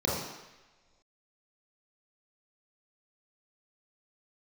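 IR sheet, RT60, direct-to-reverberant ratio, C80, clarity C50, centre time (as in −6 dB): non-exponential decay, −5.5 dB, 4.0 dB, 0.5 dB, 69 ms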